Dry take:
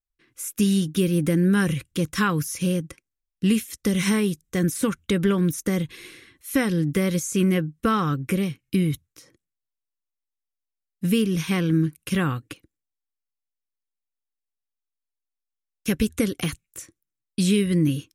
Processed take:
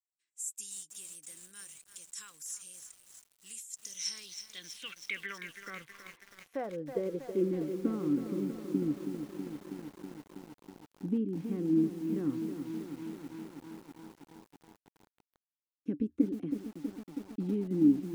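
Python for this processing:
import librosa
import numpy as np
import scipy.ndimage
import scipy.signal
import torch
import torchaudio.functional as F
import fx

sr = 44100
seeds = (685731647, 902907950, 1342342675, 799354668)

y = fx.filter_sweep_bandpass(x, sr, from_hz=7700.0, to_hz=290.0, start_s=3.67, end_s=7.58, q=7.4)
y = fx.echo_crushed(y, sr, ms=323, feedback_pct=80, bits=9, wet_db=-8)
y = F.gain(torch.from_numpy(y), 2.5).numpy()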